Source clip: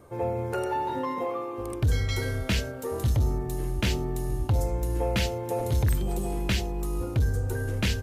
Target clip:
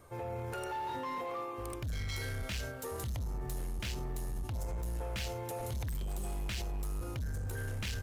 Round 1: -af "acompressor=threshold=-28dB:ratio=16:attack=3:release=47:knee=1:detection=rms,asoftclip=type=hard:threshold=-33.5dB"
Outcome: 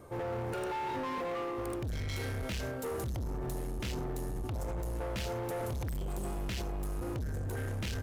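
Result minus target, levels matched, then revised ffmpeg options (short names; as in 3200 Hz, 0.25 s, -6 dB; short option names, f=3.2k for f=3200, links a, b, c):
250 Hz band +4.0 dB
-af "acompressor=threshold=-28dB:ratio=16:attack=3:release=47:knee=1:detection=rms,equalizer=f=290:t=o:w=3:g=-9.5,asoftclip=type=hard:threshold=-33.5dB"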